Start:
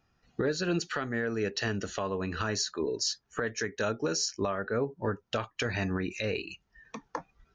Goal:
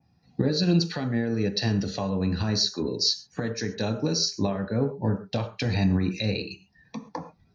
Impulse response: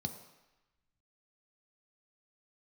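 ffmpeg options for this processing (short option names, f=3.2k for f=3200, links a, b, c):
-filter_complex "[1:a]atrim=start_sample=2205,atrim=end_sample=6174[a];[0:a][a]afir=irnorm=-1:irlink=0,adynamicequalizer=threshold=0.00708:dfrequency=4000:dqfactor=1.4:tfrequency=4000:tqfactor=1.4:attack=5:release=100:ratio=0.375:range=3:mode=boostabove:tftype=bell"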